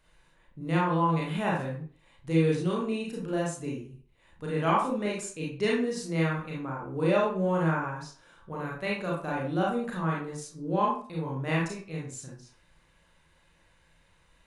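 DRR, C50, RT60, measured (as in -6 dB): -4.5 dB, 1.5 dB, 0.45 s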